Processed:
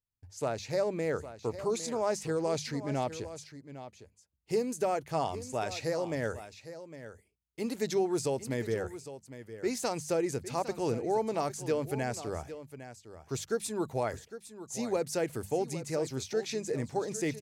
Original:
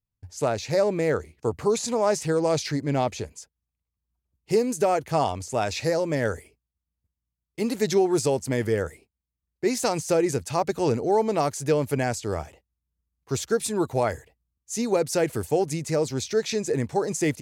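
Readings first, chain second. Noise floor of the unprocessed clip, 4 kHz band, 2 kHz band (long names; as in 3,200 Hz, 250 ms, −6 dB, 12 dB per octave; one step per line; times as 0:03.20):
below −85 dBFS, −8.0 dB, −8.0 dB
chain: mains-hum notches 50/100/150/200 Hz
single-tap delay 807 ms −13 dB
level −8 dB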